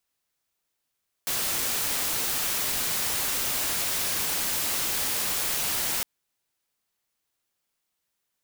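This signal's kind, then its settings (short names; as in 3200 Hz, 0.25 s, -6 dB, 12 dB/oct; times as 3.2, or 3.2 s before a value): noise white, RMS -27.5 dBFS 4.76 s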